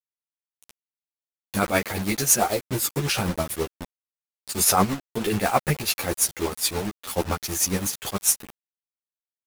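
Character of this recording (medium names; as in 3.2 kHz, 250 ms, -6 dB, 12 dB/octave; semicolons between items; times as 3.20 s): a quantiser's noise floor 6-bit, dither none; tremolo triangle 9.2 Hz, depth 70%; a shimmering, thickened sound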